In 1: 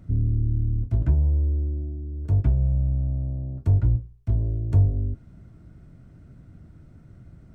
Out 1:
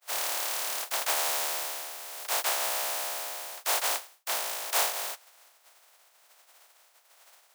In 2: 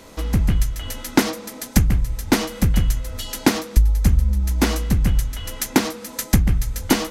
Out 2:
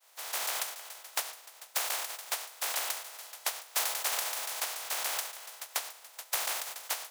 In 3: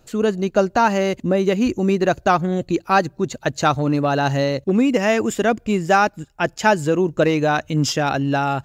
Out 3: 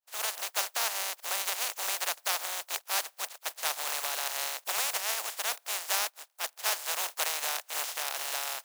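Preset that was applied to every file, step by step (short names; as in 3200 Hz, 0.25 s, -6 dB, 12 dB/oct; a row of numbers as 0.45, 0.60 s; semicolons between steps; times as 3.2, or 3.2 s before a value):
spectral contrast lowered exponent 0.14; ladder high-pass 550 Hz, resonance 35%; expander -50 dBFS; normalise peaks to -12 dBFS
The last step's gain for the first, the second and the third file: -1.5, -9.5, -7.0 dB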